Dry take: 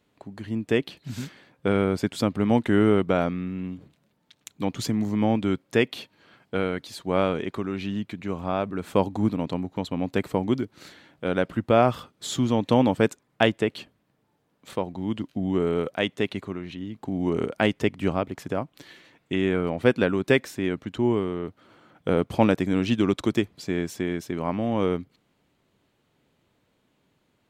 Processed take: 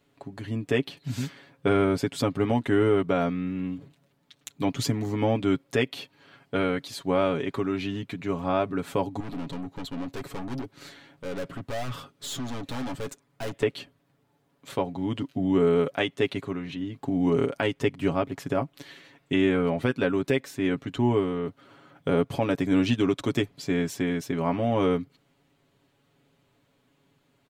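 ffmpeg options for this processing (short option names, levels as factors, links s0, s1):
-filter_complex "[0:a]asettb=1/sr,asplit=3[s0][s1][s2];[s0]atrim=end=9.204[s3];[s1]atrim=start=9.2:end=13.63,asetpts=PTS-STARTPTS,afade=t=in:d=0.004:c=qsin,afade=t=out:st=4.426:d=0.004:c=qsin,aeval=exprs='(tanh(44.7*val(0)+0.25)-tanh(0.25))/44.7':c=same[s4];[s2]atrim=start=13.626[s5];[s3][s4]acrossfade=d=0.004:c1=hsin:c2=qsin[s6];[s6][s5]acrossfade=d=0.004:c1=qsin:c2=hsin,aecho=1:1:7.2:0.69,alimiter=limit=0.251:level=0:latency=1:release=364"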